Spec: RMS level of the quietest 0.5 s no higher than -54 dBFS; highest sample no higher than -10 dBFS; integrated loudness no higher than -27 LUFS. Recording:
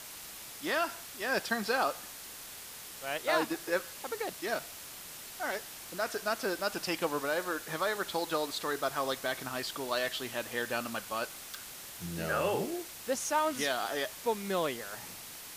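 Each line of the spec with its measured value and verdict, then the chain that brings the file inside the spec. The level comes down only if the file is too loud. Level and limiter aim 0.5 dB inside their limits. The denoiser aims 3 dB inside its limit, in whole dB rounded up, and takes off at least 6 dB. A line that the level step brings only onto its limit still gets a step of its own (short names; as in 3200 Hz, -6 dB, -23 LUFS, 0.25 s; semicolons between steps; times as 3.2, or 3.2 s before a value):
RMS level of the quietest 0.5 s -46 dBFS: fail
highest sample -16.0 dBFS: OK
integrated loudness -34.5 LUFS: OK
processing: denoiser 11 dB, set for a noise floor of -46 dBFS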